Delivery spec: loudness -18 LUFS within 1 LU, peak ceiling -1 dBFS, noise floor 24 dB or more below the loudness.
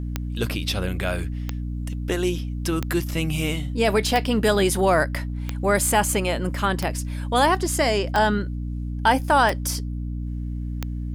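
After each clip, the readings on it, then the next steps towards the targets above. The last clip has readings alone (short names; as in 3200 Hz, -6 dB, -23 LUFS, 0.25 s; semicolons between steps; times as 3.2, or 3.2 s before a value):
clicks 9; hum 60 Hz; harmonics up to 300 Hz; hum level -26 dBFS; loudness -23.5 LUFS; peak -6.0 dBFS; loudness target -18.0 LUFS
-> de-click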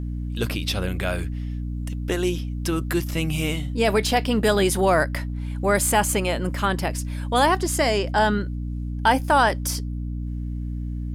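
clicks 0; hum 60 Hz; harmonics up to 300 Hz; hum level -26 dBFS
-> notches 60/120/180/240/300 Hz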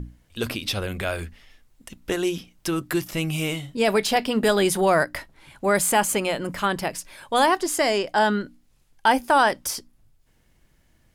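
hum none; loudness -23.0 LUFS; peak -6.5 dBFS; loudness target -18.0 LUFS
-> gain +5 dB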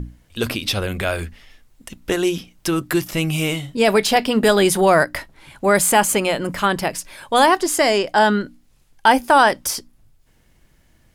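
loudness -18.0 LUFS; peak -1.5 dBFS; noise floor -57 dBFS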